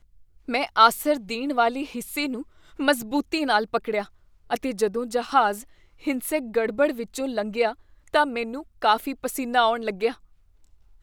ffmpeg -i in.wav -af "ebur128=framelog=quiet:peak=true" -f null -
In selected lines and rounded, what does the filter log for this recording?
Integrated loudness:
  I:         -24.4 LUFS
  Threshold: -35.0 LUFS
Loudness range:
  LRA:         2.8 LU
  Threshold: -45.3 LUFS
  LRA low:   -26.3 LUFS
  LRA high:  -23.5 LUFS
True peak:
  Peak:       -2.6 dBFS